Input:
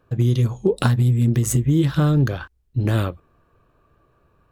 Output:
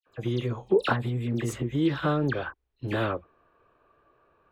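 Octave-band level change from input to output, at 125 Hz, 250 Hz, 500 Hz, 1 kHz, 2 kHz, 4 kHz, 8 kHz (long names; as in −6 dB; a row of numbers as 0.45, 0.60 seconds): −13.0, −7.0, −2.0, 0.0, −0.5, −3.5, −16.0 decibels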